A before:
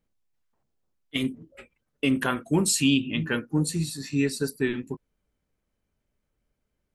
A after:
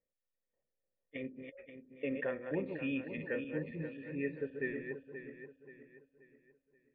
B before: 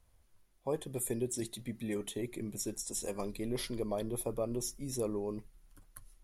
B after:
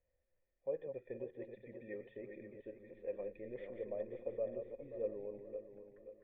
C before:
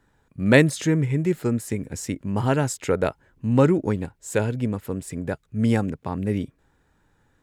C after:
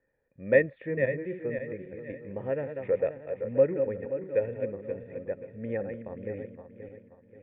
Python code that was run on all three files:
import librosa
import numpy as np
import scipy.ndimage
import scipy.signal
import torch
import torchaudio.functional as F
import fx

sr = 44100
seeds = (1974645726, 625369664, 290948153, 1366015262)

y = fx.reverse_delay_fb(x, sr, ms=265, feedback_pct=62, wet_db=-7.0)
y = fx.formant_cascade(y, sr, vowel='e')
y = y * 10.0 ** (1.5 / 20.0)